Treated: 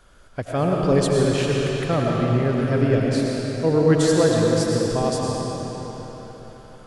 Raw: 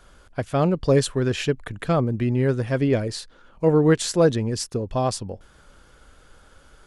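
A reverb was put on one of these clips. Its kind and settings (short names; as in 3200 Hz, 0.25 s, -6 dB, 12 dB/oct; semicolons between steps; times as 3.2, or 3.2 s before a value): digital reverb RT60 4.3 s, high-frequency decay 0.85×, pre-delay 60 ms, DRR -2.5 dB; gain -2 dB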